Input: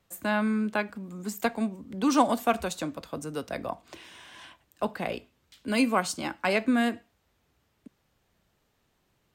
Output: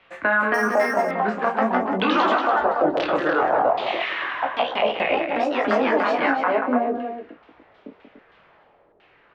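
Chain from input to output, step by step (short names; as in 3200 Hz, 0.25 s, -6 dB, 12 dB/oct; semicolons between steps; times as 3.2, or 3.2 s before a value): three-band isolator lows -15 dB, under 360 Hz, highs -17 dB, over 5200 Hz; compressor 6:1, threshold -36 dBFS, peak gain reduction 17 dB; chorus 0.41 Hz, delay 18.5 ms, depth 5.3 ms; LFO low-pass saw down 1 Hz 440–2800 Hz; echoes that change speed 0.3 s, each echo +2 st, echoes 2; loudspeakers at several distances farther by 11 m -10 dB, 63 m -10 dB, 100 m -10 dB; maximiser +27.5 dB; 0.54–1.11 decimation joined by straight lines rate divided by 6×; gain -8.5 dB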